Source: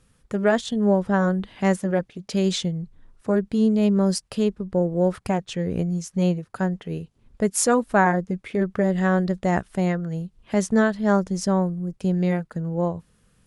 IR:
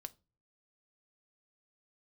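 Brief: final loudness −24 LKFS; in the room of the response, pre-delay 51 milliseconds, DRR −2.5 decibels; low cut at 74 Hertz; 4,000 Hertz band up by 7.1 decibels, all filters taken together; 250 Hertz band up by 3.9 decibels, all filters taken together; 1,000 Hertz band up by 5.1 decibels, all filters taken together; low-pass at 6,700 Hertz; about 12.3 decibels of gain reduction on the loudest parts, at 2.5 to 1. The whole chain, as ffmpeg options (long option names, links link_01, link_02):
-filter_complex "[0:a]highpass=74,lowpass=6700,equalizer=frequency=250:width_type=o:gain=5.5,equalizer=frequency=1000:width_type=o:gain=6,equalizer=frequency=4000:width_type=o:gain=9,acompressor=threshold=-30dB:ratio=2.5,asplit=2[link_01][link_02];[1:a]atrim=start_sample=2205,adelay=51[link_03];[link_02][link_03]afir=irnorm=-1:irlink=0,volume=7.5dB[link_04];[link_01][link_04]amix=inputs=2:normalize=0,volume=1dB"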